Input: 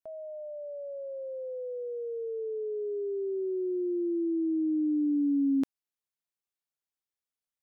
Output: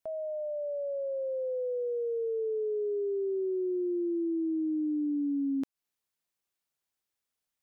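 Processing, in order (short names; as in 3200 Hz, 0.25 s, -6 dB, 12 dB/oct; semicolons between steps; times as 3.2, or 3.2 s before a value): compressor, threshold -35 dBFS, peak gain reduction 10 dB; gain +5.5 dB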